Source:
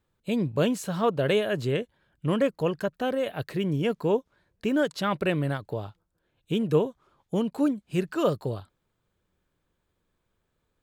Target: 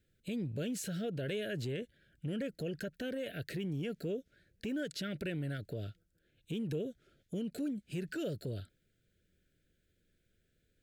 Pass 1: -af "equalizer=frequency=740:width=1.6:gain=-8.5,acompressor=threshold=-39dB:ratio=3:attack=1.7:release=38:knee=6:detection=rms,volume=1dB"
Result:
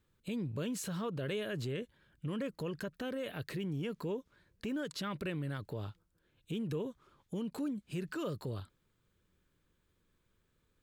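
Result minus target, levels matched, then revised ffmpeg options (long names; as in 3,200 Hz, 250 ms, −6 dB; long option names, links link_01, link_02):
1,000 Hz band +8.0 dB
-af "asuperstop=centerf=990:order=12:qfactor=1.5,equalizer=frequency=740:width=1.6:gain=-8.5,acompressor=threshold=-39dB:ratio=3:attack=1.7:release=38:knee=6:detection=rms,volume=1dB"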